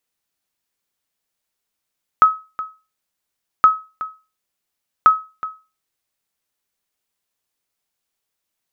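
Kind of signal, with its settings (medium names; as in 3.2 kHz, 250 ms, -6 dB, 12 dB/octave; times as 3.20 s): sonar ping 1.28 kHz, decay 0.30 s, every 1.42 s, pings 3, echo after 0.37 s, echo -16 dB -2.5 dBFS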